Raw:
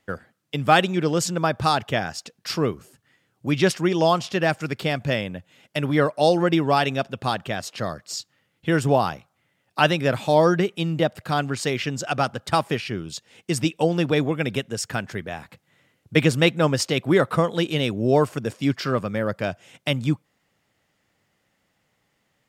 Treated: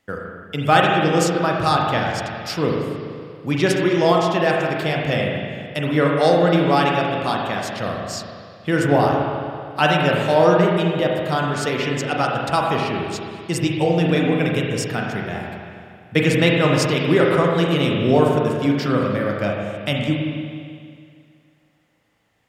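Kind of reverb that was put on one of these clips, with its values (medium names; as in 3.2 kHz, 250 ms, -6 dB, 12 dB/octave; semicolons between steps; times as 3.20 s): spring tank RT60 2.2 s, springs 35/39 ms, chirp 70 ms, DRR -1.5 dB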